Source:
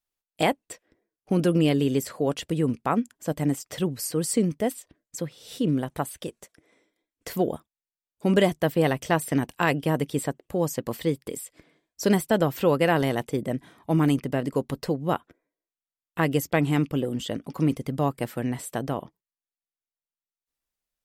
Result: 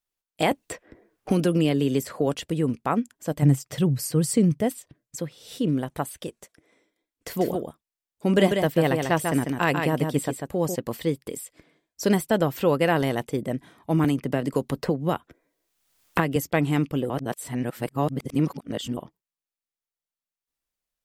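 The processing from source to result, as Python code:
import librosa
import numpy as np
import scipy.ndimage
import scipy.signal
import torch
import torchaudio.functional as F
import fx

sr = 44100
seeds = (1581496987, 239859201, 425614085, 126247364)

y = fx.band_squash(x, sr, depth_pct=70, at=(0.51, 2.35))
y = fx.peak_eq(y, sr, hz=130.0, db=13.5, octaves=0.77, at=(3.42, 5.17))
y = fx.echo_single(y, sr, ms=145, db=-5.0, at=(7.36, 10.74), fade=0.02)
y = fx.band_squash(y, sr, depth_pct=100, at=(14.04, 16.36))
y = fx.edit(y, sr, fx.reverse_span(start_s=17.1, length_s=1.87), tone=tone)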